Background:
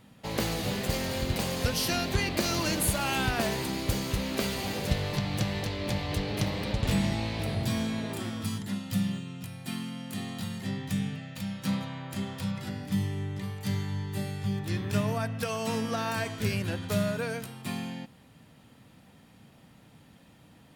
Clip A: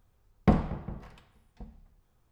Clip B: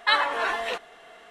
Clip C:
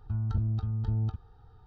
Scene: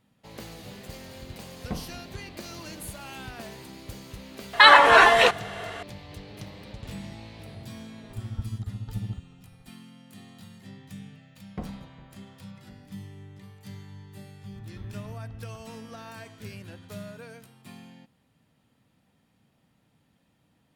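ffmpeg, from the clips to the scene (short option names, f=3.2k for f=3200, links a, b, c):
-filter_complex "[1:a]asplit=2[a][b];[3:a]asplit=2[c][d];[0:a]volume=-12dB[e];[2:a]alimiter=level_in=13dB:limit=-1dB:release=50:level=0:latency=1[f];[c]tremolo=f=14:d=0.95[g];[a]atrim=end=2.31,asetpts=PTS-STARTPTS,volume=-11.5dB,afade=t=in:d=0.004:c=hsin,afade=t=out:st=2.306:d=0.004:c=hsin,adelay=1230[h];[f]atrim=end=1.3,asetpts=PTS-STARTPTS,volume=-1dB,afade=t=in:d=0.004:c=hsin,afade=t=out:st=1.296:d=0.004:c=hsin,adelay=199773S[i];[g]atrim=end=1.66,asetpts=PTS-STARTPTS,volume=-1dB,afade=t=in:d=0.004:c=hsin,afade=t=out:st=1.656:d=0.004:c=hsin,adelay=8040[j];[b]atrim=end=2.31,asetpts=PTS-STARTPTS,volume=-14dB,afade=t=in:d=0.004:c=hsin,afade=t=out:st=2.306:d=0.004:c=hsin,adelay=11100[k];[d]atrim=end=1.66,asetpts=PTS-STARTPTS,volume=-12.5dB,afade=t=in:d=0.004:c=hsin,afade=t=out:st=1.656:d=0.004:c=hsin,adelay=14460[l];[e][h][i][j][k][l]amix=inputs=6:normalize=0"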